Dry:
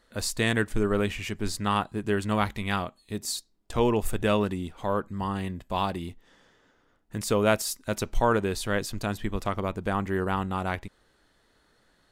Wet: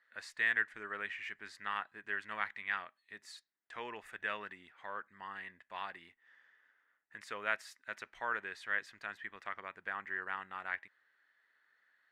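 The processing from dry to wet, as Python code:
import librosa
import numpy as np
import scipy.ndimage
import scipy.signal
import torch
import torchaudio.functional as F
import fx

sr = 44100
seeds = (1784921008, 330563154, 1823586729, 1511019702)

y = fx.bandpass_q(x, sr, hz=1800.0, q=4.3)
y = y * 10.0 ** (1.0 / 20.0)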